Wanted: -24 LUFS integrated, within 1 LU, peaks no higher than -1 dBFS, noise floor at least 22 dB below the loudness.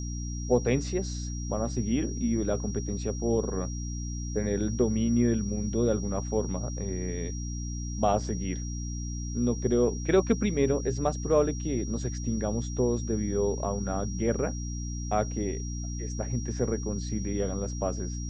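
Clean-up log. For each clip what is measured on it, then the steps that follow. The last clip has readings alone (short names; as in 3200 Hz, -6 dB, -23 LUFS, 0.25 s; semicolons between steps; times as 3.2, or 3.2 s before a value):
hum 60 Hz; harmonics up to 300 Hz; hum level -32 dBFS; steady tone 5700 Hz; tone level -42 dBFS; loudness -29.5 LUFS; peak -10.5 dBFS; loudness target -24.0 LUFS
-> de-hum 60 Hz, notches 5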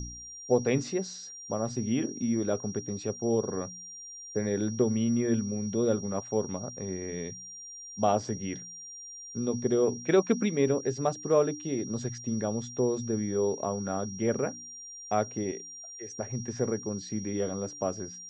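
hum none; steady tone 5700 Hz; tone level -42 dBFS
-> notch 5700 Hz, Q 30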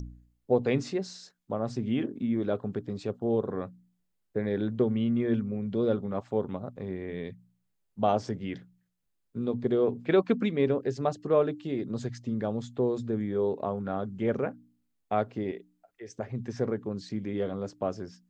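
steady tone none; loudness -30.5 LUFS; peak -11.5 dBFS; loudness target -24.0 LUFS
-> gain +6.5 dB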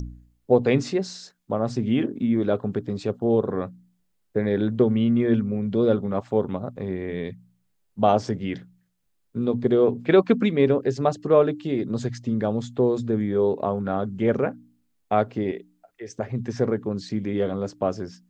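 loudness -24.0 LUFS; peak -5.0 dBFS; noise floor -70 dBFS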